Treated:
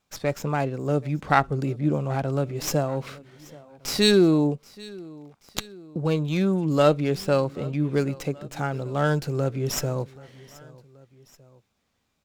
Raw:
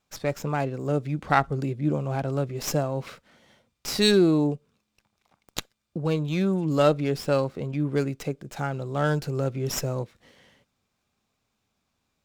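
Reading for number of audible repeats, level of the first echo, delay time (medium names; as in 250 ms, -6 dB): 2, -22.0 dB, 780 ms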